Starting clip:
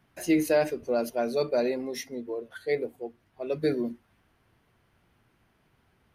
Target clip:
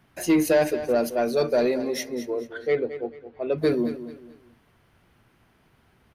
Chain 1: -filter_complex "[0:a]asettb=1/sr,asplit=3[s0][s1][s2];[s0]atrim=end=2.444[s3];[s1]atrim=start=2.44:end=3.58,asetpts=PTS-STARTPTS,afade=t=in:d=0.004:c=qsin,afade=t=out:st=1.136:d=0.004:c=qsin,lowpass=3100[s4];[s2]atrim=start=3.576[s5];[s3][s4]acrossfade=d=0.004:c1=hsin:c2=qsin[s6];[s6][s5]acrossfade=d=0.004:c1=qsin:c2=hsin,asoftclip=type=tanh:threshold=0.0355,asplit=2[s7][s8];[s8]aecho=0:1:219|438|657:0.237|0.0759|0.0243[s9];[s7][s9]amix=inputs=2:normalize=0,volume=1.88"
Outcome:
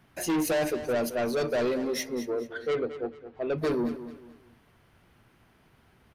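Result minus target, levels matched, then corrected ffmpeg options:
saturation: distortion +12 dB
-filter_complex "[0:a]asettb=1/sr,asplit=3[s0][s1][s2];[s0]atrim=end=2.444[s3];[s1]atrim=start=2.44:end=3.58,asetpts=PTS-STARTPTS,afade=t=in:d=0.004:c=qsin,afade=t=out:st=1.136:d=0.004:c=qsin,lowpass=3100[s4];[s2]atrim=start=3.576[s5];[s3][s4]acrossfade=d=0.004:c1=hsin:c2=qsin[s6];[s6][s5]acrossfade=d=0.004:c1=qsin:c2=hsin,asoftclip=type=tanh:threshold=0.133,asplit=2[s7][s8];[s8]aecho=0:1:219|438|657:0.237|0.0759|0.0243[s9];[s7][s9]amix=inputs=2:normalize=0,volume=1.88"

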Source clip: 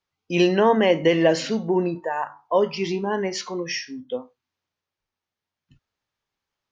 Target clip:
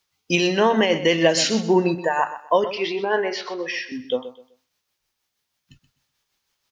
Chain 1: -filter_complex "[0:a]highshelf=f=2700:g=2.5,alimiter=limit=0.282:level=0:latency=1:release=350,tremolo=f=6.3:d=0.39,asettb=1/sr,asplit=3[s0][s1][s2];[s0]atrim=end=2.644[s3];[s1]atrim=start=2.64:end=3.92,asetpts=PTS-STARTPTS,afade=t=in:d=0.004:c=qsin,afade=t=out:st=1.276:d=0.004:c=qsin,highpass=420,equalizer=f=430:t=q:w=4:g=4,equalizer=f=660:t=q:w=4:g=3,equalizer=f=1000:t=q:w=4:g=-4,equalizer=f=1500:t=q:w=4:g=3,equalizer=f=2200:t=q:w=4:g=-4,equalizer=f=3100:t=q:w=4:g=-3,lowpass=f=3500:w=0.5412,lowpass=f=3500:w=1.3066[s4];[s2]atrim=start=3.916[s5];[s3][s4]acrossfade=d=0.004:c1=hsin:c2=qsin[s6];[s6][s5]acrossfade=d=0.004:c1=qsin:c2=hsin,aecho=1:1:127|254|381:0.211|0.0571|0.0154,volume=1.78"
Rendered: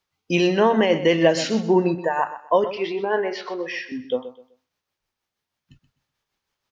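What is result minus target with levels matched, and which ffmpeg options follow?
4 kHz band -4.5 dB
-filter_complex "[0:a]highshelf=f=2700:g=13,alimiter=limit=0.282:level=0:latency=1:release=350,tremolo=f=6.3:d=0.39,asettb=1/sr,asplit=3[s0][s1][s2];[s0]atrim=end=2.644[s3];[s1]atrim=start=2.64:end=3.92,asetpts=PTS-STARTPTS,afade=t=in:d=0.004:c=qsin,afade=t=out:st=1.276:d=0.004:c=qsin,highpass=420,equalizer=f=430:t=q:w=4:g=4,equalizer=f=660:t=q:w=4:g=3,equalizer=f=1000:t=q:w=4:g=-4,equalizer=f=1500:t=q:w=4:g=3,equalizer=f=2200:t=q:w=4:g=-4,equalizer=f=3100:t=q:w=4:g=-3,lowpass=f=3500:w=0.5412,lowpass=f=3500:w=1.3066[s4];[s2]atrim=start=3.916[s5];[s3][s4]acrossfade=d=0.004:c1=hsin:c2=qsin[s6];[s6][s5]acrossfade=d=0.004:c1=qsin:c2=hsin,aecho=1:1:127|254|381:0.211|0.0571|0.0154,volume=1.78"

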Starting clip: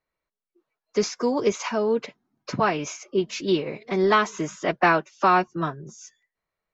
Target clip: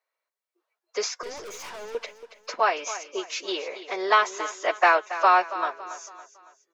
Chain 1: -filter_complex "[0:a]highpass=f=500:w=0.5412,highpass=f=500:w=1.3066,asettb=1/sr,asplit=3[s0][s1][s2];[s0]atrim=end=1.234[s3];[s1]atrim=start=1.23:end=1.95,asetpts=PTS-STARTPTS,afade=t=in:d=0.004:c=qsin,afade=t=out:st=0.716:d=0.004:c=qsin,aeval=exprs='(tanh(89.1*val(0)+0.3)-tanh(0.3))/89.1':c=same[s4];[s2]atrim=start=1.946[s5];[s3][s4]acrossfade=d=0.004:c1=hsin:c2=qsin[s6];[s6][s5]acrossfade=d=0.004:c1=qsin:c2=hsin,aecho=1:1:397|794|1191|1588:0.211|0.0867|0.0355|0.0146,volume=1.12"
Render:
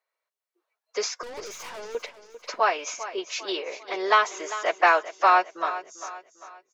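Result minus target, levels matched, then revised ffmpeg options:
echo 118 ms late
-filter_complex "[0:a]highpass=f=500:w=0.5412,highpass=f=500:w=1.3066,asettb=1/sr,asplit=3[s0][s1][s2];[s0]atrim=end=1.234[s3];[s1]atrim=start=1.23:end=1.95,asetpts=PTS-STARTPTS,afade=t=in:d=0.004:c=qsin,afade=t=out:st=0.716:d=0.004:c=qsin,aeval=exprs='(tanh(89.1*val(0)+0.3)-tanh(0.3))/89.1':c=same[s4];[s2]atrim=start=1.946[s5];[s3][s4]acrossfade=d=0.004:c1=hsin:c2=qsin[s6];[s6][s5]acrossfade=d=0.004:c1=qsin:c2=hsin,aecho=1:1:279|558|837|1116:0.211|0.0867|0.0355|0.0146,volume=1.12"

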